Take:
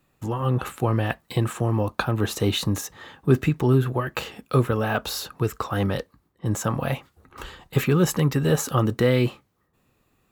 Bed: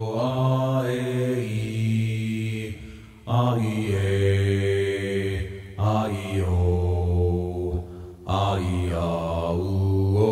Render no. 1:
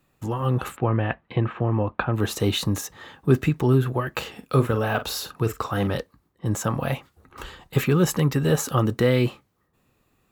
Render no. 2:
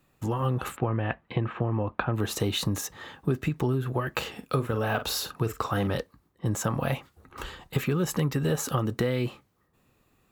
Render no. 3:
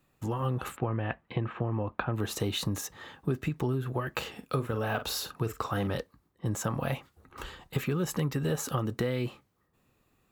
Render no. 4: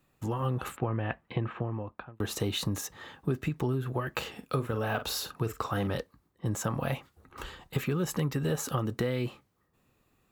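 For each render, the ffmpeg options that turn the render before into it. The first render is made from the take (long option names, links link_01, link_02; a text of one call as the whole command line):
ffmpeg -i in.wav -filter_complex "[0:a]asplit=3[link_01][link_02][link_03];[link_01]afade=type=out:start_time=0.75:duration=0.02[link_04];[link_02]lowpass=frequency=2800:width=0.5412,lowpass=frequency=2800:width=1.3066,afade=type=in:start_time=0.75:duration=0.02,afade=type=out:start_time=2.12:duration=0.02[link_05];[link_03]afade=type=in:start_time=2.12:duration=0.02[link_06];[link_04][link_05][link_06]amix=inputs=3:normalize=0,asettb=1/sr,asplit=3[link_07][link_08][link_09];[link_07]atrim=end=4.314[link_10];[link_08]atrim=start=4.31:end=5.97,asetpts=PTS-STARTPTS,afade=type=in:duration=0.004:curve=qsin,afade=type=out:start_time=1.656:duration=0.004:curve=qsin,asplit=2[link_11][link_12];[link_12]adelay=44,volume=-11dB[link_13];[link_11][link_13]amix=inputs=2:normalize=0,atrim=end_sample=73206[link_14];[link_09]atrim=start=5.966[link_15];[link_10][link_14]acrossfade=duration=0.004:curve1=hsin:curve2=qsin[link_16];[link_16][link_15]acrossfade=duration=0.004:curve1=qsin:curve2=hsin" out.wav
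ffmpeg -i in.wav -af "acompressor=threshold=-22dB:ratio=12" out.wav
ffmpeg -i in.wav -af "volume=-3.5dB" out.wav
ffmpeg -i in.wav -filter_complex "[0:a]asplit=2[link_01][link_02];[link_01]atrim=end=2.2,asetpts=PTS-STARTPTS,afade=type=out:start_time=1.5:duration=0.7[link_03];[link_02]atrim=start=2.2,asetpts=PTS-STARTPTS,afade=type=in:duration=0.004:curve=hsin[link_04];[link_03][link_04]concat=n=2:v=0:a=1" out.wav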